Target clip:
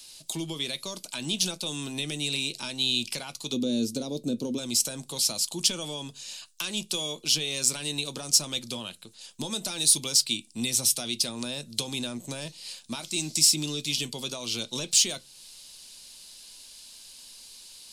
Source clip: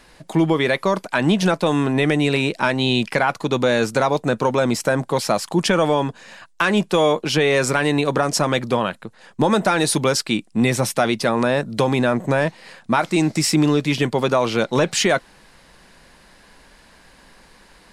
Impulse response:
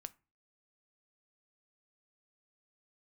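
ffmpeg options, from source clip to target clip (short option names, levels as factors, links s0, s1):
-filter_complex "[0:a]asplit=3[s0][s1][s2];[s0]afade=t=out:st=3.52:d=0.02[s3];[s1]equalizer=f=250:t=o:w=1:g=12,equalizer=f=500:t=o:w=1:g=7,equalizer=f=1000:t=o:w=1:g=-7,equalizer=f=2000:t=o:w=1:g=-8,equalizer=f=8000:t=o:w=1:g=-6,afade=t=in:st=3.52:d=0.02,afade=t=out:st=4.57:d=0.02[s4];[s2]afade=t=in:st=4.57:d=0.02[s5];[s3][s4][s5]amix=inputs=3:normalize=0,acrossover=split=310[s6][s7];[s7]acompressor=threshold=0.0316:ratio=2[s8];[s6][s8]amix=inputs=2:normalize=0,aexciter=amount=9.8:drive=8.1:freq=2800[s9];[1:a]atrim=start_sample=2205,asetrate=70560,aresample=44100[s10];[s9][s10]afir=irnorm=-1:irlink=0,volume=0.501"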